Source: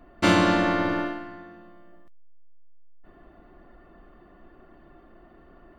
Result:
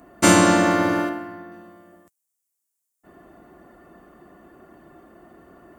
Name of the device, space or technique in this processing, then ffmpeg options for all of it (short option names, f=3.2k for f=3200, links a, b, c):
budget condenser microphone: -filter_complex "[0:a]asettb=1/sr,asplit=3[a][b][c];[a]atrim=end=1.094[d];[b]atrim=start=1.09:end=1.52,asetpts=PTS-STARTPTS,afade=t=in:d=0.004:c=qsin,afade=t=out:st=0.426:d=0.004:c=qsin,equalizer=f=6.2k:w=0.63:g=-7.5[e];[c]atrim=start=1.516[f];[d][e]acrossfade=d=0.004:c1=hsin:c2=qsin[g];[g][f]acrossfade=d=0.004:c1=qsin:c2=hsin,highpass=95,highshelf=f=5.5k:t=q:w=1.5:g=12.5,volume=5dB"